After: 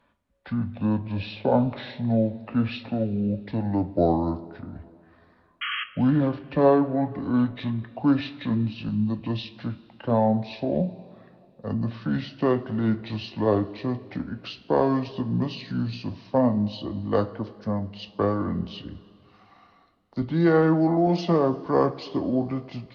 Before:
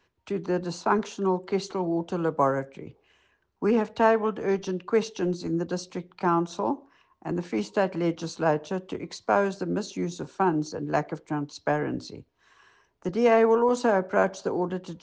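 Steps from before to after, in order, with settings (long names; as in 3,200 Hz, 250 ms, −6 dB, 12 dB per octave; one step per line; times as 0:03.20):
gliding playback speed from 59% → 72%
sound drawn into the spectrogram noise, 0:05.61–0:05.84, 1,100–3,300 Hz −31 dBFS
coupled-rooms reverb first 0.23 s, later 2.5 s, from −18 dB, DRR 8 dB
level +1 dB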